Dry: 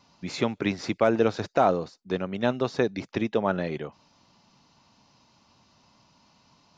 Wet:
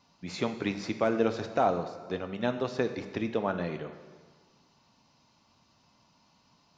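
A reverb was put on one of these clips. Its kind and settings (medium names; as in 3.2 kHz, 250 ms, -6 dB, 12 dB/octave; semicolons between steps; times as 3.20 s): plate-style reverb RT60 1.5 s, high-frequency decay 0.9×, pre-delay 0 ms, DRR 7.5 dB; trim -5 dB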